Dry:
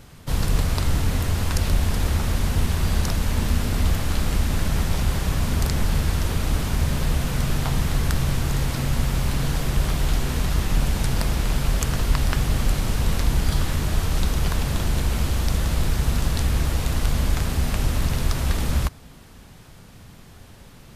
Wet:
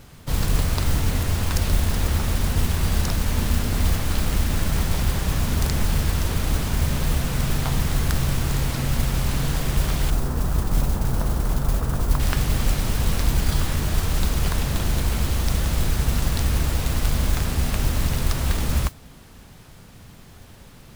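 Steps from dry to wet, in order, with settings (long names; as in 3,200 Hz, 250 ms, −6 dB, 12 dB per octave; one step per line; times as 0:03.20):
0:10.10–0:12.20: inverse Chebyshev low-pass filter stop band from 4,800 Hz, stop band 60 dB
noise that follows the level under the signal 18 dB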